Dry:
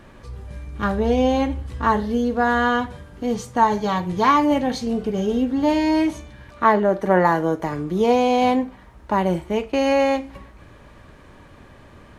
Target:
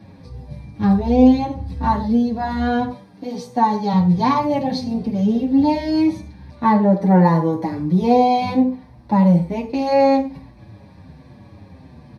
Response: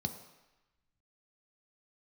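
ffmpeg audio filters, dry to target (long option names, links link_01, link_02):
-filter_complex "[0:a]asettb=1/sr,asplit=3[link_01][link_02][link_03];[link_01]atrim=end=2.894[link_04];[link_02]atrim=start=2.89:end=3.93,asetpts=PTS-STARTPTS,afade=type=in:duration=0.004:curve=qsin,afade=type=out:start_time=1.036:duration=0.004:curve=qsin,highpass=270[link_05];[link_03]atrim=start=3.926[link_06];[link_04][link_05]acrossfade=duration=0.004:curve1=hsin:curve2=qsin[link_07];[link_07][link_06]acrossfade=duration=0.004:curve1=qsin:curve2=hsin[link_08];[1:a]atrim=start_sample=2205,afade=type=out:start_time=0.16:duration=0.01,atrim=end_sample=7497[link_09];[link_08][link_09]afir=irnorm=-1:irlink=0,asplit=2[link_10][link_11];[link_11]adelay=6.8,afreqshift=-1.3[link_12];[link_10][link_12]amix=inputs=2:normalize=1,volume=-1dB"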